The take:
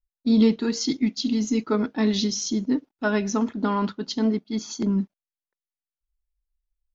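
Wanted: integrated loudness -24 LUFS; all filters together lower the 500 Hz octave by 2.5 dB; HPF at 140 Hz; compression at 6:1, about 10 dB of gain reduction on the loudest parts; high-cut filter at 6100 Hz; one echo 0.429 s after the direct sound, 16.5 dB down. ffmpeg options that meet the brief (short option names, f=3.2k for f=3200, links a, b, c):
-af "highpass=140,lowpass=6.1k,equalizer=f=500:t=o:g=-3,acompressor=threshold=-26dB:ratio=6,aecho=1:1:429:0.15,volume=7dB"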